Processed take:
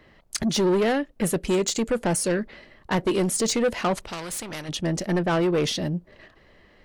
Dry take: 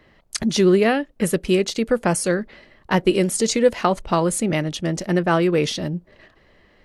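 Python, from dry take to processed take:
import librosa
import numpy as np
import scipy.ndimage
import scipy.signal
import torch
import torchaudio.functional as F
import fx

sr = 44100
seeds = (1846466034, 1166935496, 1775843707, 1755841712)

y = fx.peak_eq(x, sr, hz=7200.0, db=14.5, octaves=0.27, at=(1.47, 1.97))
y = 10.0 ** (-17.5 / 20.0) * np.tanh(y / 10.0 ** (-17.5 / 20.0))
y = fx.spectral_comp(y, sr, ratio=2.0, at=(3.94, 4.68), fade=0.02)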